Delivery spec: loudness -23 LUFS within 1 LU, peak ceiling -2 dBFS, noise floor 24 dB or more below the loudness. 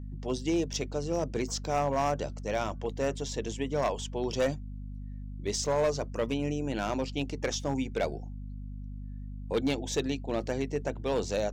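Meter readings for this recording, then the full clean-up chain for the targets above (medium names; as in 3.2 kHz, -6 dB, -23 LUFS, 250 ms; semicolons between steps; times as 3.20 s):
clipped samples 1.1%; clipping level -21.5 dBFS; hum 50 Hz; highest harmonic 250 Hz; hum level -37 dBFS; loudness -31.5 LUFS; peak level -21.5 dBFS; loudness target -23.0 LUFS
-> clip repair -21.5 dBFS; hum notches 50/100/150/200/250 Hz; trim +8.5 dB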